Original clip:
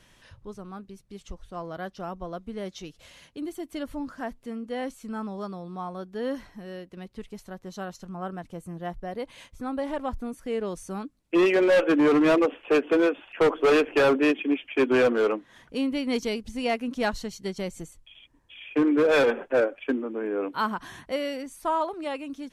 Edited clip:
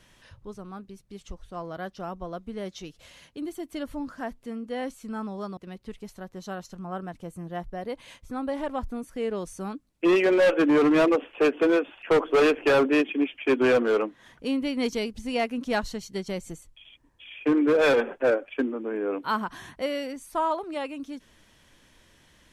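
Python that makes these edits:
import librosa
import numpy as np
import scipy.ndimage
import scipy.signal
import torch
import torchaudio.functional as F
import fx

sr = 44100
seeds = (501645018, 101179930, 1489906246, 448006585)

y = fx.edit(x, sr, fx.cut(start_s=5.57, length_s=1.3), tone=tone)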